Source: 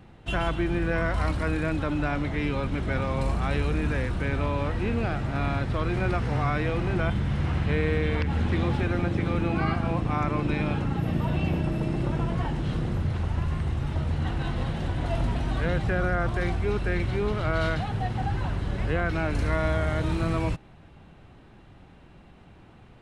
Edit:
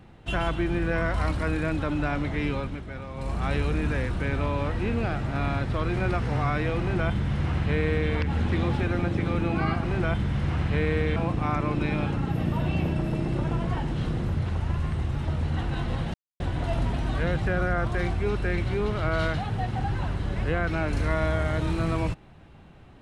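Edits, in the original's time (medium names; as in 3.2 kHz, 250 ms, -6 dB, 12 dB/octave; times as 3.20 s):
2.51–3.47 s: dip -10 dB, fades 0.33 s
6.80–8.12 s: copy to 9.84 s
14.82 s: insert silence 0.26 s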